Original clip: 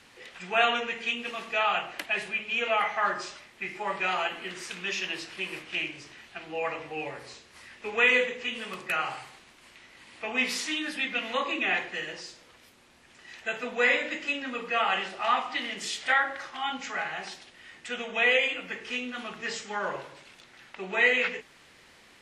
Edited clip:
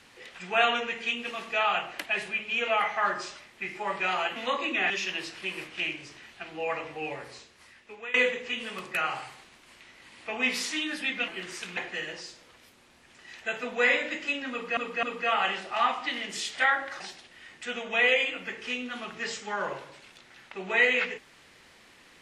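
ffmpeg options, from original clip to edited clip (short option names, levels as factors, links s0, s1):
-filter_complex "[0:a]asplit=9[s0][s1][s2][s3][s4][s5][s6][s7][s8];[s0]atrim=end=4.362[s9];[s1]atrim=start=11.228:end=11.772[s10];[s2]atrim=start=4.848:end=8.09,asetpts=PTS-STARTPTS,afade=t=out:st=2.342:d=0.9:silence=0.0944061[s11];[s3]atrim=start=8.09:end=11.232,asetpts=PTS-STARTPTS,afade=t=in:d=0.004:c=hsin:silence=0.0944061[s12];[s4]atrim=start=4.358:end=4.852[s13];[s5]atrim=start=11.768:end=14.772[s14];[s6]atrim=start=14.508:end=14.772[s15];[s7]atrim=start=14.508:end=16.482[s16];[s8]atrim=start=17.228[s17];[s9][s10]acrossfade=d=0.004:c1=hsin:c2=hsin[s18];[s11][s12]concat=n=2:v=0:a=1[s19];[s18][s19]acrossfade=d=0.004:c1=hsin:c2=hsin[s20];[s20][s13]acrossfade=d=0.004:c1=hsin:c2=hsin[s21];[s21][s14]acrossfade=d=0.004:c1=hsin:c2=hsin[s22];[s22][s15]acrossfade=d=0.004:c1=hsin:c2=hsin[s23];[s23][s16]acrossfade=d=0.004:c1=hsin:c2=hsin[s24];[s24][s17]acrossfade=d=0.004:c1=hsin:c2=hsin"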